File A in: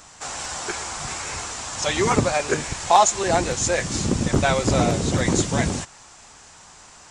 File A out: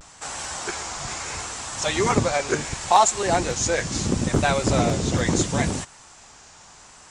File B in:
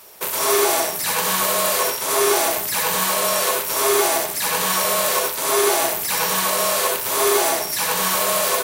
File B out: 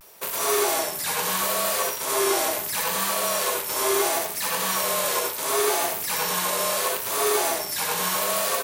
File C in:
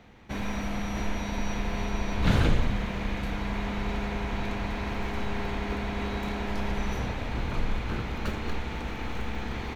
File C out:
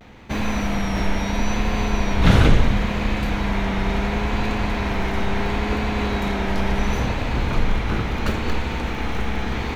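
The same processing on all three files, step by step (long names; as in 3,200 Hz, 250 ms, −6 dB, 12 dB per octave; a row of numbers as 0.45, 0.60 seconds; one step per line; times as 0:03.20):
pitch vibrato 0.73 Hz 66 cents
loudness normalisation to −23 LKFS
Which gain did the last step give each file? −1.0, −5.0, +8.5 decibels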